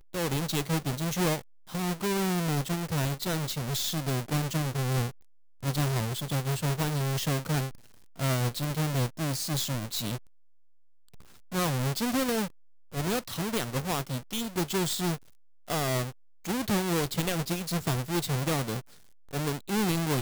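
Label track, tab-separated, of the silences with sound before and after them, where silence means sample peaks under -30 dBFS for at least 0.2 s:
1.390000	1.740000	silence
5.090000	5.640000	silence
7.690000	8.200000	silence
10.160000	11.520000	silence
12.470000	12.940000	silence
15.150000	15.700000	silence
16.090000	16.450000	silence
18.790000	19.330000	silence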